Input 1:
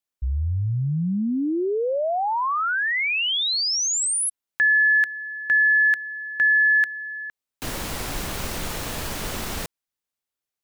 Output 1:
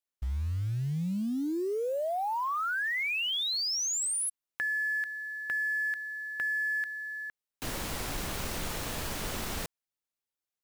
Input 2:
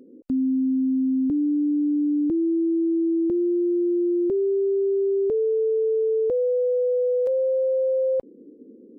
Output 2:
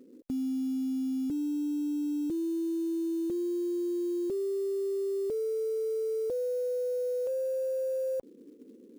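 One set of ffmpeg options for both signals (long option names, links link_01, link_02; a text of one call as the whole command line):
ffmpeg -i in.wav -af "acompressor=threshold=-24dB:ratio=10:attack=5.4:release=35:knee=1:detection=rms,acrusher=bits=6:mode=log:mix=0:aa=0.000001,volume=-5.5dB" out.wav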